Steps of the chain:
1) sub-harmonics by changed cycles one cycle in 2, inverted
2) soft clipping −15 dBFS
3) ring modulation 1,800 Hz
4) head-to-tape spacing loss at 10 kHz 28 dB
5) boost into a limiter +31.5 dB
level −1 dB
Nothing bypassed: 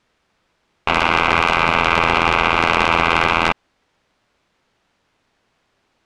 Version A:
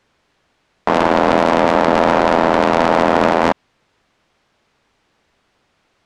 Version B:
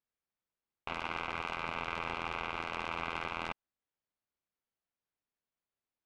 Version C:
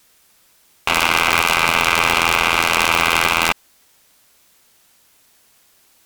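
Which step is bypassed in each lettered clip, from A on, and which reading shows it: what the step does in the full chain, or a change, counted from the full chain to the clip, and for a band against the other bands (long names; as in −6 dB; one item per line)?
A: 3, change in crest factor −2.5 dB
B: 5, change in crest factor +3.5 dB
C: 4, 8 kHz band +16.5 dB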